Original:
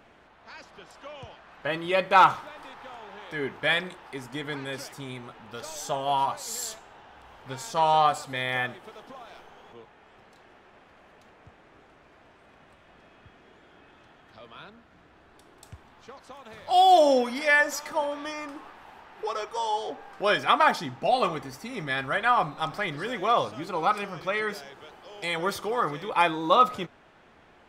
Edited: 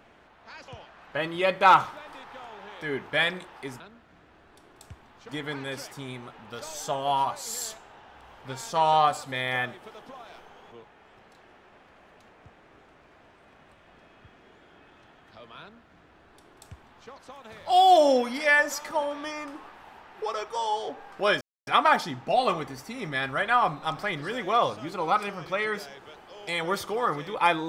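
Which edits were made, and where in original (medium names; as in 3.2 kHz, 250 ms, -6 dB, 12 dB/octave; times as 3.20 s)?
0.68–1.18 s: delete
14.62–16.11 s: copy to 4.30 s
20.42 s: insert silence 0.26 s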